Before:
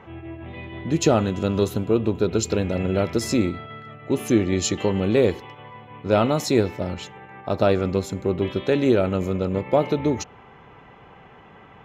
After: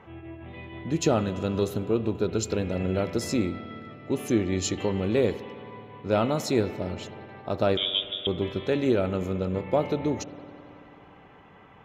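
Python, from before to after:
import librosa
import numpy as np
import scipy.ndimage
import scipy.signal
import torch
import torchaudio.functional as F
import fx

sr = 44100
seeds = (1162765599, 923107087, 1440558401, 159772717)

y = fx.freq_invert(x, sr, carrier_hz=3600, at=(7.77, 8.27))
y = fx.rev_spring(y, sr, rt60_s=3.1, pass_ms=(54,), chirp_ms=40, drr_db=13.5)
y = y * 10.0 ** (-5.0 / 20.0)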